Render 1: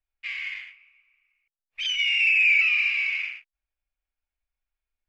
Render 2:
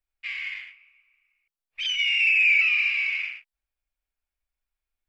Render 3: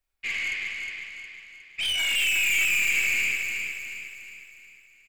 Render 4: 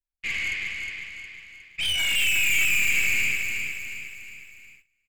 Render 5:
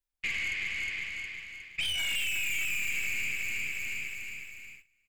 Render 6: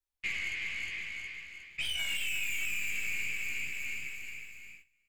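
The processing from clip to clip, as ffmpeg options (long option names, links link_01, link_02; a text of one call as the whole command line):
ffmpeg -i in.wav -af "bandreject=frequency=6400:width=14" out.wav
ffmpeg -i in.wav -filter_complex "[0:a]asplit=2[link_01][link_02];[link_02]aecho=0:1:33|48:0.531|0.398[link_03];[link_01][link_03]amix=inputs=2:normalize=0,aeval=exprs='(tanh(25.1*val(0)+0.2)-tanh(0.2))/25.1':channel_layout=same,asplit=2[link_04][link_05];[link_05]aecho=0:1:361|722|1083|1444|1805|2166:0.562|0.264|0.124|0.0584|0.0274|0.0129[link_06];[link_04][link_06]amix=inputs=2:normalize=0,volume=4.5dB" out.wav
ffmpeg -i in.wav -af "bass=frequency=250:gain=9,treble=frequency=4000:gain=-4,agate=range=-19dB:threshold=-50dB:ratio=16:detection=peak,highshelf=frequency=5100:gain=7.5" out.wav
ffmpeg -i in.wav -af "acompressor=threshold=-32dB:ratio=4,volume=1.5dB" out.wav
ffmpeg -i in.wav -af "flanger=delay=15:depth=3.1:speed=0.52" out.wav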